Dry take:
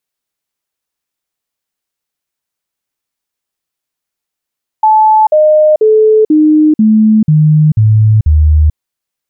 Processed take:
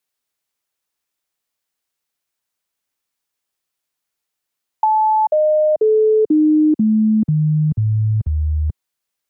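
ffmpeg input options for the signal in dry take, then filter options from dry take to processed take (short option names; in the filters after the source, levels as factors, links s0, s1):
-f lavfi -i "aevalsrc='0.668*clip(min(mod(t,0.49),0.44-mod(t,0.49))/0.005,0,1)*sin(2*PI*867*pow(2,-floor(t/0.49)/2)*mod(t,0.49))':d=3.92:s=44100"
-filter_complex "[0:a]lowshelf=f=380:g=-4,acrossover=split=120|270[s0][s1][s2];[s0]acompressor=threshold=0.0794:ratio=4[s3];[s1]acompressor=threshold=0.0794:ratio=4[s4];[s2]acompressor=threshold=0.178:ratio=4[s5];[s3][s4][s5]amix=inputs=3:normalize=0"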